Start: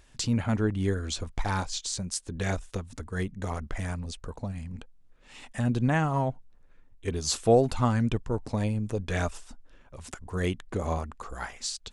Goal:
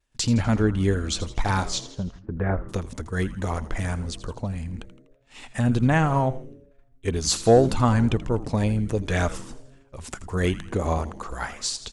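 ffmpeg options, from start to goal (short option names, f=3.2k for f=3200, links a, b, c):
-filter_complex "[0:a]asettb=1/sr,asplit=3[a][b][c];[a]atrim=end=1.814[d];[b]atrim=start=1.81:end=2.69,asetpts=PTS-STARTPTS,afade=t=in:d=0.004:c=qsin,afade=t=out:st=0.876:d=0.004:c=qsin,lowpass=f=1.6k:w=0.5412,lowpass=f=1.6k:w=1.3066[e];[c]atrim=start=2.686[f];[d][e]acrossfade=d=0.004:c1=hsin:c2=qsin[g];[g][f]acrossfade=d=0.004:c1=qsin:c2=hsin,agate=range=-33dB:threshold=-45dB:ratio=3:detection=peak,acontrast=89,asplit=6[h][i][j][k][l][m];[i]adelay=82,afreqshift=-140,volume=-14.5dB[n];[j]adelay=164,afreqshift=-280,volume=-19.9dB[o];[k]adelay=246,afreqshift=-420,volume=-25.2dB[p];[l]adelay=328,afreqshift=-560,volume=-30.6dB[q];[m]adelay=410,afreqshift=-700,volume=-35.9dB[r];[h][n][o][p][q][r]amix=inputs=6:normalize=0,volume=-2dB"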